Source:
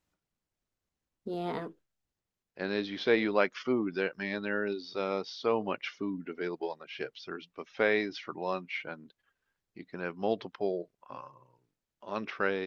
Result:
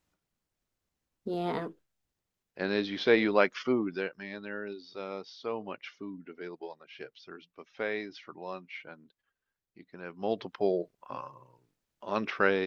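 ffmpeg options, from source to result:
-af "volume=4.73,afade=t=out:st=3.61:d=0.61:silence=0.354813,afade=t=in:st=10.06:d=0.68:silence=0.281838"

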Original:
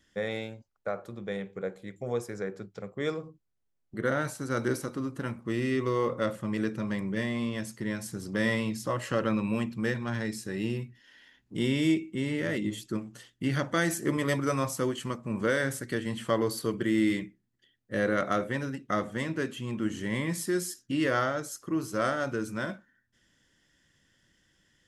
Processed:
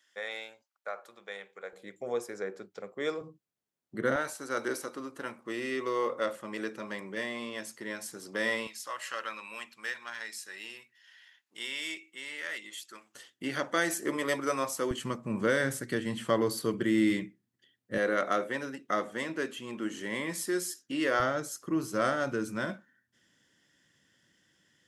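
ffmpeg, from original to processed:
-af "asetnsamples=n=441:p=0,asendcmd='1.73 highpass f 330;3.21 highpass f 160;4.16 highpass f 420;8.67 highpass f 1200;13.15 highpass f 350;14.91 highpass f 120;17.98 highpass f 320;21.2 highpass f 130',highpass=830"

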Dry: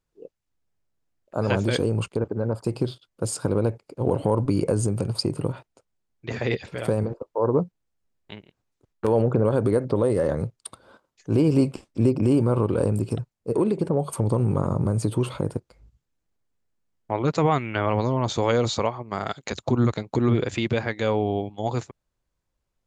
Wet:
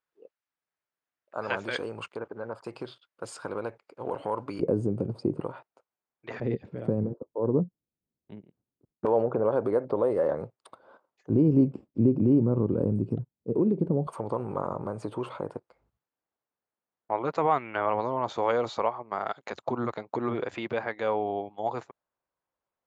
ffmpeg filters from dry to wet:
-af "asetnsamples=n=441:p=0,asendcmd='4.6 bandpass f 310;5.4 bandpass f 1000;6.4 bandpass f 220;9.05 bandpass f 760;11.3 bandpass f 220;14.07 bandpass f 910',bandpass=f=1500:t=q:w=0.94:csg=0"

